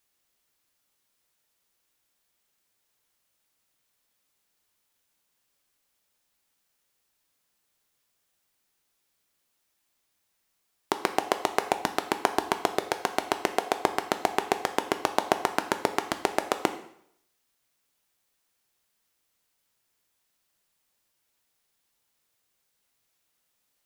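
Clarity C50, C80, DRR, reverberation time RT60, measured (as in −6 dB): 12.0 dB, 14.5 dB, 8.0 dB, 0.70 s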